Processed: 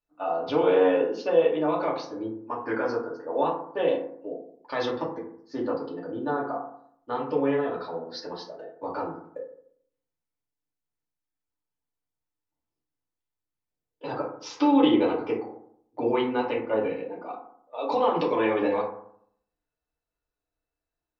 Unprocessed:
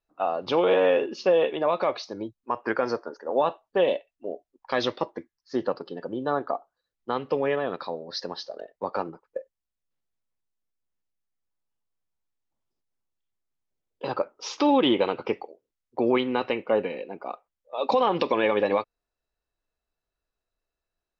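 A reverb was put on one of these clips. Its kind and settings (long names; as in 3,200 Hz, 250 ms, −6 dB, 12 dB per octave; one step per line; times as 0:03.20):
feedback delay network reverb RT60 0.65 s, low-frequency decay 1.2×, high-frequency decay 0.35×, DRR −4.5 dB
level −8 dB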